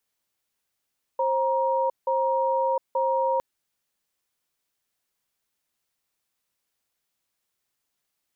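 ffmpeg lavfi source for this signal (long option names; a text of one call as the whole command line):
ffmpeg -f lavfi -i "aevalsrc='0.0668*(sin(2*PI*531*t)+sin(2*PI*944*t))*clip(min(mod(t,0.88),0.71-mod(t,0.88))/0.005,0,1)':duration=2.21:sample_rate=44100" out.wav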